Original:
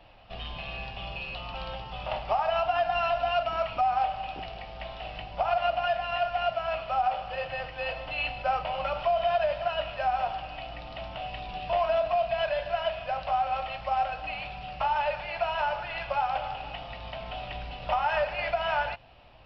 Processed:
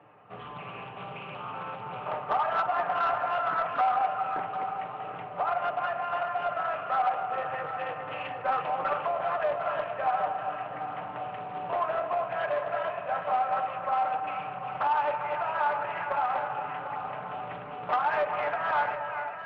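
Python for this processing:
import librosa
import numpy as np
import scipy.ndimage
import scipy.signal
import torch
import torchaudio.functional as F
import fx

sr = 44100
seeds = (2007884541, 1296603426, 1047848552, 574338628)

p1 = fx.cabinet(x, sr, low_hz=120.0, low_slope=24, high_hz=2000.0, hz=(420.0, 660.0, 1200.0), db=(8, -5, 7))
p2 = p1 + 0.34 * np.pad(p1, (int(6.7 * sr / 1000.0), 0))[:len(p1)]
p3 = fx.echo_split(p2, sr, split_hz=840.0, low_ms=237, high_ms=400, feedback_pct=52, wet_db=-8.0)
p4 = 10.0 ** (-17.5 / 20.0) * np.tanh(p3 / 10.0 ** (-17.5 / 20.0))
p5 = p4 + fx.echo_single(p4, sr, ms=747, db=-11.0, dry=0)
y = fx.doppler_dist(p5, sr, depth_ms=0.29)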